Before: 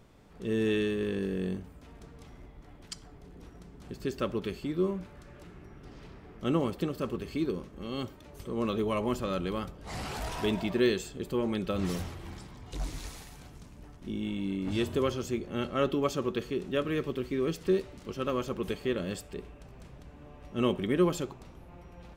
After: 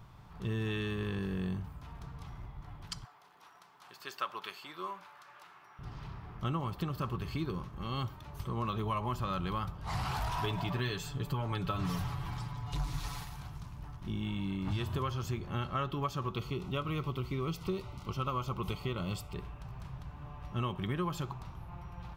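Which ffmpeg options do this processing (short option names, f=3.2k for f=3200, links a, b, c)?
-filter_complex "[0:a]asettb=1/sr,asplit=3[a][b][c];[a]atrim=end=3.044[d];[b]atrim=start=3.04:end=5.79,asetpts=PTS-STARTPTS,afade=t=in:d=0.004:c=qsin,afade=t=out:st=2.746:d=0.004:c=qsin,highpass=750[e];[c]atrim=start=5.786[f];[d][e]acrossfade=d=0.004:c1=hsin:c2=qsin[g];[g][f]acrossfade=d=0.004:c1=qsin:c2=hsin,asettb=1/sr,asplit=3[h][i][j];[h]atrim=end=10.434[k];[i]atrim=start=10.43:end=13.25,asetpts=PTS-STARTPTS,afade=t=in:d=0.004:c=qsin,afade=t=out:st=2.816:d=0.004:c=qsin,aecho=1:1:7:0.65,atrim=end_sample=124362[l];[j]atrim=start=13.246[m];[k][l]acrossfade=d=0.004:c1=hsin:c2=qsin[n];[n][m]acrossfade=d=0.004:c1=qsin:c2=hsin,asettb=1/sr,asplit=3[o][p][q];[o]atrim=end=16.324[r];[p]atrim=start=16.32:end=19.36,asetpts=PTS-STARTPTS,afade=t=in:d=0.004:c=qsin,afade=t=out:st=3.036:d=0.004:c=qsin,asuperstop=centerf=1700:order=8:qfactor=4.4[s];[q]atrim=start=19.356[t];[r][s]acrossfade=d=0.004:c1=hsin:c2=qsin[u];[u][t]acrossfade=d=0.004:c1=qsin:c2=hsin,equalizer=f=125:t=o:w=1:g=8,equalizer=f=250:t=o:w=1:g=-9,equalizer=f=500:t=o:w=1:g=-11,equalizer=f=1k:t=o:w=1:g=8,equalizer=f=2k:t=o:w=1:g=-4,equalizer=f=8k:t=o:w=1:g=-8,acompressor=threshold=-34dB:ratio=6,volume=3.5dB"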